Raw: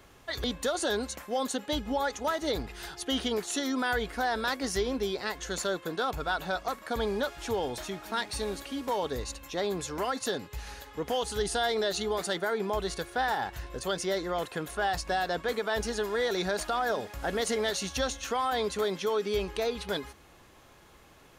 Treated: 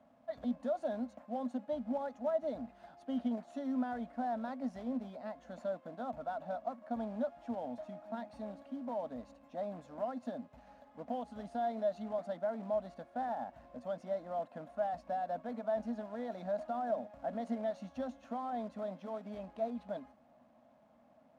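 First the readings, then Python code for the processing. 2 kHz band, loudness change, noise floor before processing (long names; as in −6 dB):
−20.5 dB, −8.5 dB, −56 dBFS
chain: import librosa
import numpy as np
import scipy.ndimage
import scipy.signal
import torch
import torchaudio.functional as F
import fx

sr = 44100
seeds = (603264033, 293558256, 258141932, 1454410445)

y = fx.quant_companded(x, sr, bits=4)
y = fx.double_bandpass(y, sr, hz=390.0, octaves=1.4)
y = F.gain(torch.from_numpy(y), 1.5).numpy()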